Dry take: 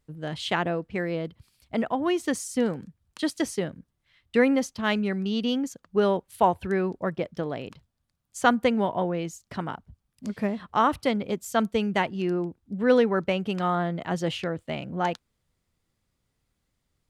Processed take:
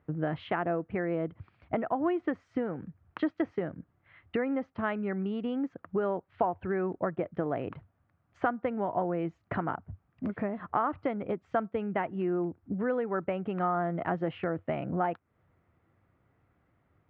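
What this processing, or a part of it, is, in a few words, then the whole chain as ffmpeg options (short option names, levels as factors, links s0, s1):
bass amplifier: -af "acompressor=threshold=0.0112:ratio=5,highpass=86,equalizer=f=93:t=q:w=4:g=6,equalizer=f=220:t=q:w=4:g=-3,equalizer=f=320:t=q:w=4:g=4,equalizer=f=700:t=q:w=4:g=5,equalizer=f=1300:t=q:w=4:g=4,lowpass=f=2100:w=0.5412,lowpass=f=2100:w=1.3066,volume=2.66"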